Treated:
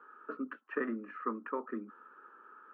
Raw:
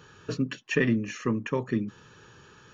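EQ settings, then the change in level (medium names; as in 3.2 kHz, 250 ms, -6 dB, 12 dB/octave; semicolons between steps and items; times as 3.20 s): steep high-pass 230 Hz 48 dB/octave; four-pole ladder low-pass 1.4 kHz, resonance 80%; +2.5 dB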